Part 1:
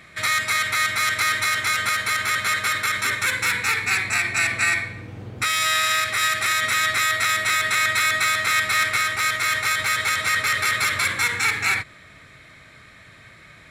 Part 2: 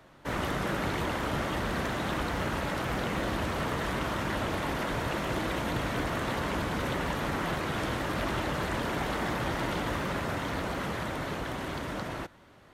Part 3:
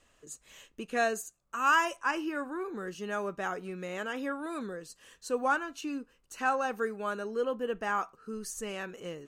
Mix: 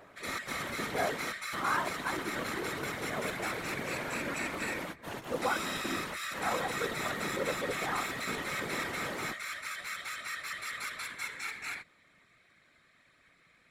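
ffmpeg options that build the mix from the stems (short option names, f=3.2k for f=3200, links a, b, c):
-filter_complex "[0:a]volume=-11.5dB[a];[1:a]highshelf=f=7.4k:g=8.5,volume=-3dB[b];[2:a]lowpass=f=1.6k:w=0.5412,lowpass=f=1.6k:w=1.3066,acompressor=mode=upward:threshold=-35dB:ratio=2.5,volume=1.5dB,asplit=2[c][d];[d]apad=whole_len=561530[e];[b][e]sidechaingate=range=-33dB:threshold=-51dB:ratio=16:detection=peak[f];[a][f][c]amix=inputs=3:normalize=0,highpass=f=140:w=0.5412,highpass=f=140:w=1.3066,afftfilt=real='hypot(re,im)*cos(2*PI*random(0))':imag='hypot(re,im)*sin(2*PI*random(1))':win_size=512:overlap=0.75"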